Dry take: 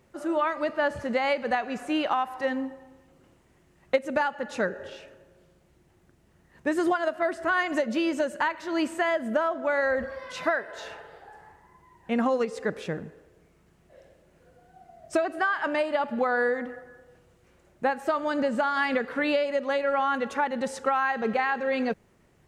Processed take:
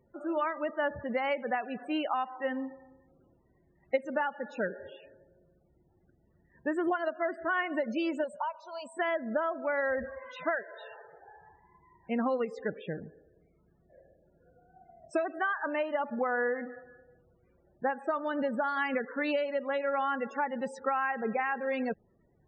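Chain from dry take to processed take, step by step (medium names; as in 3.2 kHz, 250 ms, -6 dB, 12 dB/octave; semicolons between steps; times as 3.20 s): 8.24–8.97 s: static phaser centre 780 Hz, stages 4; loudest bins only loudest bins 32; trim -5 dB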